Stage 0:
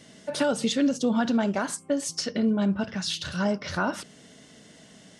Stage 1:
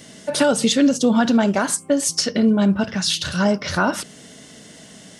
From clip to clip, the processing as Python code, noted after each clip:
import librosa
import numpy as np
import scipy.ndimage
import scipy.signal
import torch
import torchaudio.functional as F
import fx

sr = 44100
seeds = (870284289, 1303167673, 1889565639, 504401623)

y = fx.high_shelf(x, sr, hz=9400.0, db=10.0)
y = y * librosa.db_to_amplitude(7.5)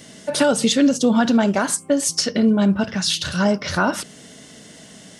y = x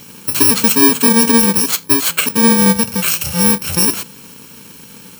y = fx.bit_reversed(x, sr, seeds[0], block=64)
y = y * librosa.db_to_amplitude(5.5)